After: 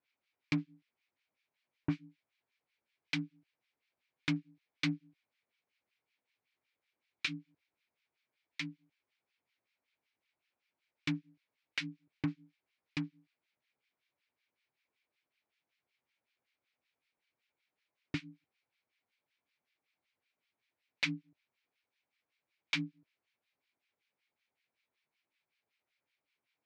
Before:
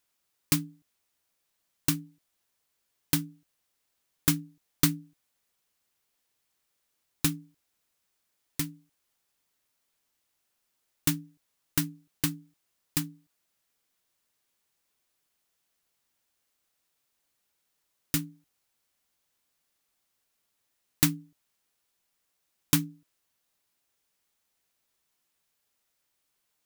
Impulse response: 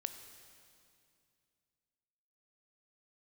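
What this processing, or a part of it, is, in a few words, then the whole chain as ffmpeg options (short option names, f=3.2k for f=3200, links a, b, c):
guitar amplifier with harmonic tremolo: -filter_complex "[0:a]acrossover=split=1300[a][b];[a]aeval=exprs='val(0)*(1-1/2+1/2*cos(2*PI*5.3*n/s))':c=same[c];[b]aeval=exprs='val(0)*(1-1/2-1/2*cos(2*PI*5.3*n/s))':c=same[d];[c][d]amix=inputs=2:normalize=0,asoftclip=type=tanh:threshold=-18.5dB,highpass=100,equalizer=f=180:t=q:w=4:g=-5,equalizer=f=1.2k:t=q:w=4:g=-3,equalizer=f=2.3k:t=q:w=4:g=10,lowpass=f=4.3k:w=0.5412,lowpass=f=4.3k:w=1.3066"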